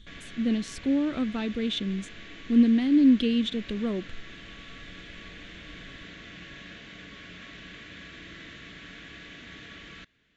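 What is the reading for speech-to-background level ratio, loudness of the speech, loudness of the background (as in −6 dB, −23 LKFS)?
18.5 dB, −25.5 LKFS, −44.0 LKFS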